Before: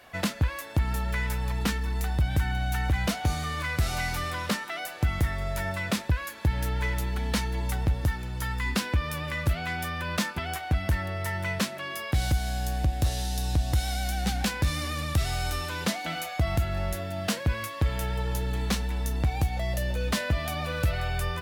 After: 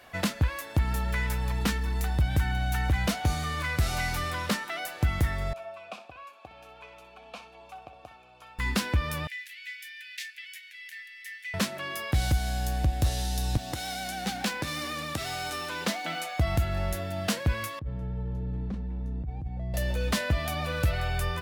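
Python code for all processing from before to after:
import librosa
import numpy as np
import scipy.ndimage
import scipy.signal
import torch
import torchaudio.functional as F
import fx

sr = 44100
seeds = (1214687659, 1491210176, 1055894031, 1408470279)

y = fx.chain(x, sr, fx.vowel_filter(vowel='a'),
    fx.high_shelf(hz=2900.0, db=7.5),
    fx.room_flutter(wall_m=10.6, rt60_s=0.29), at=(5.53, 8.59))
y = fx.chain(y, sr, fx.steep_highpass(hz=1800.0, slope=72),
    fx.high_shelf(hz=2900.0, db=-10.0), at=(9.27, 11.54))
y = fx.chain(y, sr, fx.highpass(hz=200.0, slope=12),
    fx.resample_linear(factor=2), at=(13.57, 16.38))
y = fx.chain(y, sr, fx.bandpass_q(hz=140.0, q=0.9),
    fx.over_compress(threshold_db=-30.0, ratio=-1.0), at=(17.79, 19.74))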